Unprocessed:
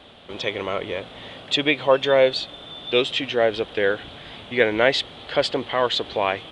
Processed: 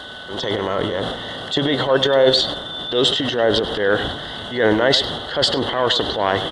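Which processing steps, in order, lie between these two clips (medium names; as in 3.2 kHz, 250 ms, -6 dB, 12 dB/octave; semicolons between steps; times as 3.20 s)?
Butterworth band-stop 2.4 kHz, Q 2.5; in parallel at +1.5 dB: compression, threshold -29 dBFS, peak gain reduction 16.5 dB; on the sum: transient shaper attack -7 dB, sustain +10 dB; whistle 1.5 kHz -45 dBFS; speakerphone echo 100 ms, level -10 dB; tape noise reduction on one side only encoder only; trim +1 dB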